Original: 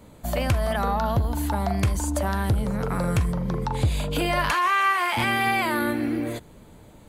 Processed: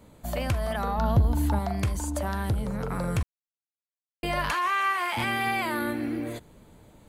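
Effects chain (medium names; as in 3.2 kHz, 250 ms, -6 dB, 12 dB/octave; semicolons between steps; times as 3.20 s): 0.98–1.59 s: bass shelf 400 Hz +7.5 dB; 3.23–4.23 s: mute; trim -4.5 dB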